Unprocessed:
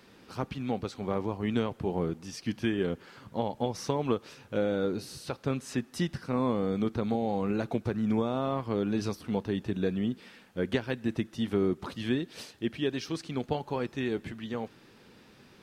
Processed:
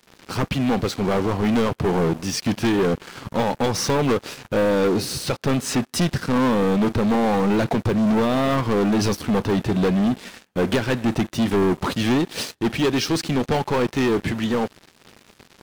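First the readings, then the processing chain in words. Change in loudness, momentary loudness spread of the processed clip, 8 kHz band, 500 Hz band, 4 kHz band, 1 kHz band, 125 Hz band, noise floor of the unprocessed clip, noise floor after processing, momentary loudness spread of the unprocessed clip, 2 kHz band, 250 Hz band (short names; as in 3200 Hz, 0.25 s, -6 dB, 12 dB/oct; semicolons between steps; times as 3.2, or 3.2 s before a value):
+10.5 dB, 6 LU, +16.5 dB, +9.5 dB, +13.0 dB, +11.5 dB, +10.5 dB, -57 dBFS, -55 dBFS, 8 LU, +12.5 dB, +10.0 dB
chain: sample leveller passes 5; gain -1.5 dB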